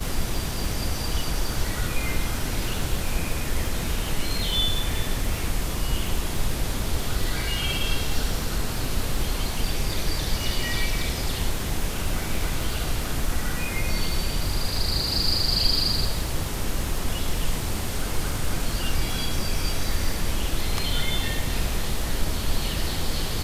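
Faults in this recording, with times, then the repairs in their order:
surface crackle 55 per second −30 dBFS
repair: click removal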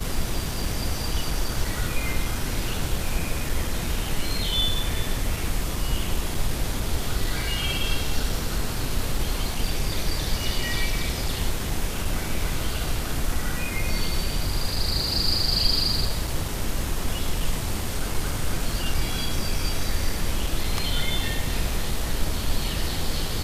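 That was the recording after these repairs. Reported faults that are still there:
none of them is left

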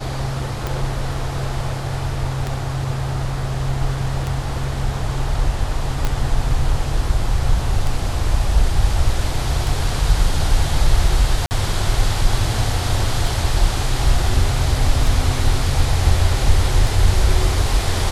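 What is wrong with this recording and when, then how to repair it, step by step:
scratch tick 33 1/3 rpm
0:06.05: click −7 dBFS
0:11.46–0:11.51: drop-out 49 ms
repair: click removal
repair the gap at 0:11.46, 49 ms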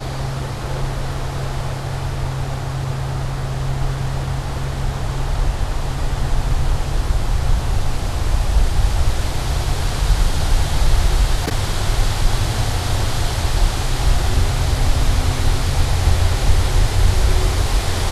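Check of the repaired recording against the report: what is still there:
0:06.05: click

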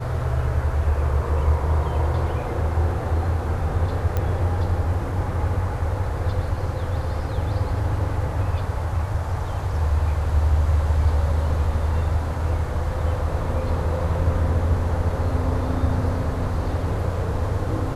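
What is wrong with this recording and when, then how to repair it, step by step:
0:04.17: click −12 dBFS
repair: click removal

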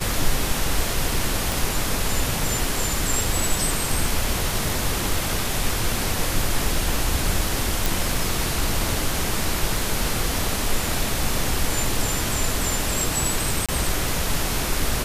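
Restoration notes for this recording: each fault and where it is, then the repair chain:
0:01.52: click
0:07.86: click
0:13.66–0:13.69: drop-out 26 ms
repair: click removal
repair the gap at 0:13.66, 26 ms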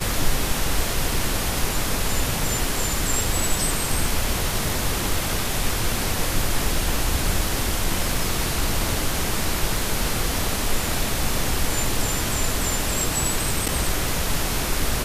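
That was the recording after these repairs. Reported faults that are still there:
none of them is left

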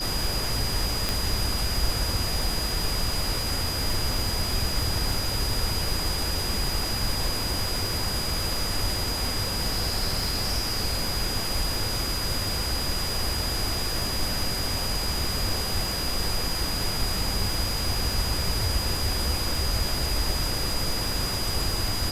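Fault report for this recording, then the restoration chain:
surface crackle 52 per second −31 dBFS
whistle 4,900 Hz −30 dBFS
0:01.09: click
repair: click removal
notch filter 4,900 Hz, Q 30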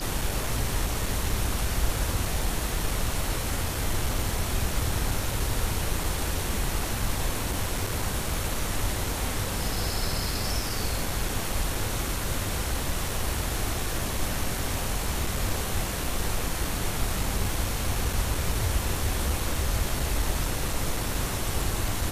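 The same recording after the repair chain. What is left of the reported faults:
none of them is left

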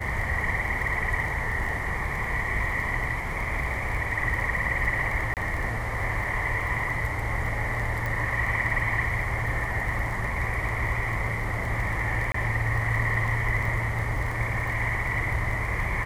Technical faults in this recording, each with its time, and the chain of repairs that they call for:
surface crackle 21 per second −31 dBFS
0:05.34–0:05.37: drop-out 28 ms
0:08.06: click
0:12.32–0:12.34: drop-out 24 ms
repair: click removal
repair the gap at 0:05.34, 28 ms
repair the gap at 0:12.32, 24 ms

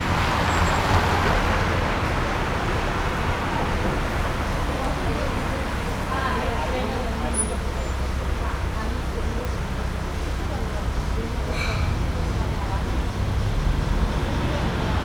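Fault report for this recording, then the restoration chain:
0:09.45: click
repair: click removal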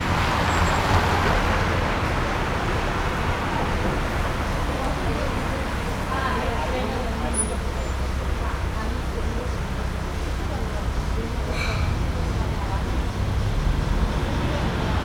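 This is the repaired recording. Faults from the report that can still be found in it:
none of them is left

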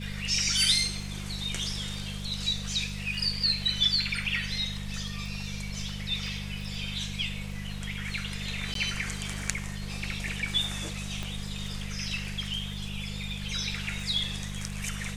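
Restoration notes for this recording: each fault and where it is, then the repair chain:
surface crackle 28 per second −39 dBFS
mains hum 50 Hz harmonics 4 −37 dBFS
0:08.74–0:08.75: drop-out 13 ms
0:11.23: click −21 dBFS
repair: click removal
hum removal 50 Hz, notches 4
repair the gap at 0:08.74, 13 ms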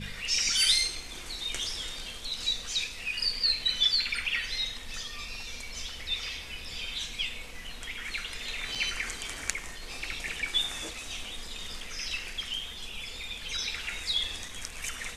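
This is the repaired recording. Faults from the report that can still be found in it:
0:11.23: click

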